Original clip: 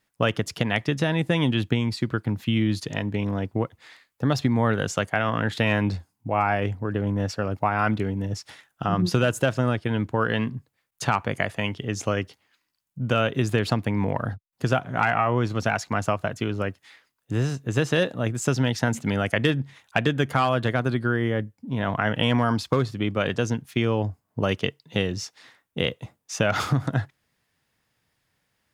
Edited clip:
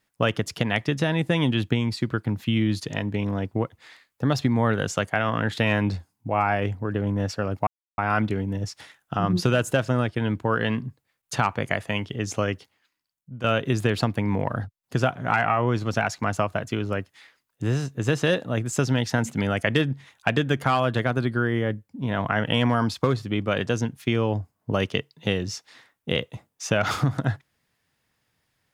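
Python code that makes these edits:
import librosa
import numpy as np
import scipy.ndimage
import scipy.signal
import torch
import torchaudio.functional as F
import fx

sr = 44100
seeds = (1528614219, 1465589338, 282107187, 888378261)

y = fx.edit(x, sr, fx.insert_silence(at_s=7.67, length_s=0.31),
    fx.fade_out_to(start_s=12.18, length_s=0.95, floor_db=-12.5), tone=tone)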